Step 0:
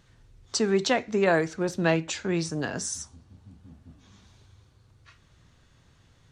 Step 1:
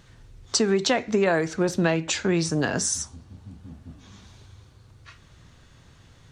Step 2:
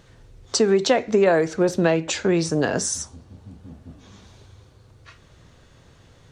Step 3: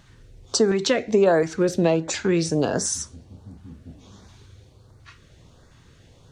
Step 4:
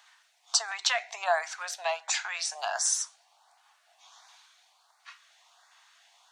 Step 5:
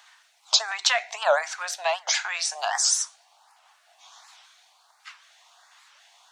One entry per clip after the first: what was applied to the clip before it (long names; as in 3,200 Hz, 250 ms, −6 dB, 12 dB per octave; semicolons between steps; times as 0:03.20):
downward compressor 6 to 1, threshold −25 dBFS, peak gain reduction 8 dB; level +7 dB
parametric band 500 Hz +6.5 dB 1.2 octaves
auto-filter notch saw up 1.4 Hz 420–3,300 Hz
Chebyshev high-pass filter 700 Hz, order 6
wow of a warped record 78 rpm, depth 250 cents; level +5 dB